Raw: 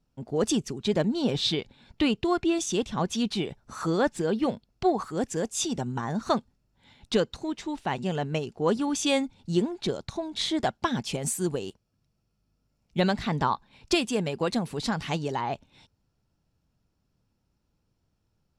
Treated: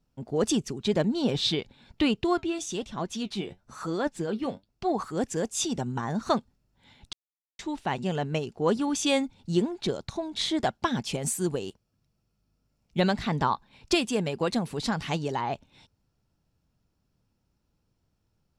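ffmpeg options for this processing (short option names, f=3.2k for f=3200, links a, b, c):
-filter_complex "[0:a]asplit=3[a][b][c];[a]afade=t=out:st=2.37:d=0.02[d];[b]flanger=delay=2.9:depth=8.4:regen=59:speed=1:shape=sinusoidal,afade=t=in:st=2.37:d=0.02,afade=t=out:st=4.89:d=0.02[e];[c]afade=t=in:st=4.89:d=0.02[f];[d][e][f]amix=inputs=3:normalize=0,asplit=3[g][h][i];[g]atrim=end=7.13,asetpts=PTS-STARTPTS,afade=t=out:st=7.126:d=0.004:c=hsin[j];[h]atrim=start=7.13:end=7.59,asetpts=PTS-STARTPTS,volume=0[k];[i]atrim=start=7.59,asetpts=PTS-STARTPTS,afade=t=in:d=0.004:c=hsin[l];[j][k][l]concat=n=3:v=0:a=1"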